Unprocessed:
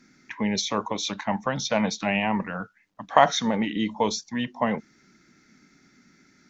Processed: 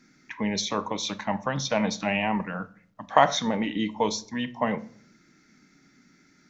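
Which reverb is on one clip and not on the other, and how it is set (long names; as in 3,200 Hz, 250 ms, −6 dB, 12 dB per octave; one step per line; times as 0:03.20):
rectangular room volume 720 cubic metres, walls furnished, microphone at 0.52 metres
level −1.5 dB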